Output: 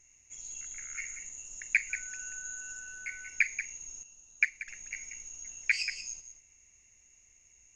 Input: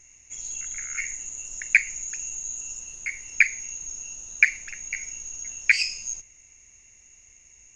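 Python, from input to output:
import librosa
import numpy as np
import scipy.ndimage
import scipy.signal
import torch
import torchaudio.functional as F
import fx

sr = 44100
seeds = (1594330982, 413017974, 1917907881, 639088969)

y = fx.dmg_tone(x, sr, hz=1500.0, level_db=-38.0, at=(1.89, 3.28), fade=0.02)
y = y + 10.0 ** (-10.0 / 20.0) * np.pad(y, (int(184 * sr / 1000.0), 0))[:len(y)]
y = fx.upward_expand(y, sr, threshold_db=-31.0, expansion=1.5, at=(4.03, 4.68))
y = y * librosa.db_to_amplitude(-9.0)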